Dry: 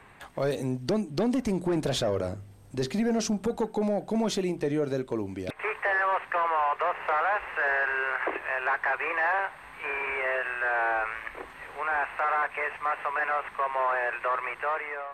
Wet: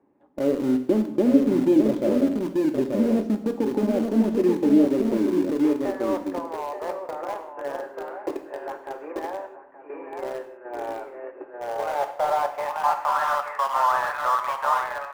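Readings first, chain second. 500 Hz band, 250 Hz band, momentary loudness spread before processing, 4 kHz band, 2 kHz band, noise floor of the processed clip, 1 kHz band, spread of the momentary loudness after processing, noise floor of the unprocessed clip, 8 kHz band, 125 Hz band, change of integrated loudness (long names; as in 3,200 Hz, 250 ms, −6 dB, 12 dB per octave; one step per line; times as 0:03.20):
+5.0 dB, +10.0 dB, 7 LU, −3.0 dB, −8.5 dB, −45 dBFS, +2.5 dB, 16 LU, −48 dBFS, can't be measured, −1.0 dB, +4.5 dB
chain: on a send: single-tap delay 885 ms −4 dB
on the sum: band-pass filter sweep 320 Hz → 1,200 Hz, 0:11.04–0:13.42
noise gate −42 dBFS, range −8 dB
low-shelf EQ 78 Hz +5.5 dB
hollow resonant body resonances 290/570/840 Hz, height 11 dB, ringing for 25 ms
far-end echo of a speakerphone 250 ms, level −19 dB
in parallel at −8 dB: centre clipping without the shift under −26 dBFS
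on the sum: reverb whose tail is shaped and stops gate 210 ms falling, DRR 6.5 dB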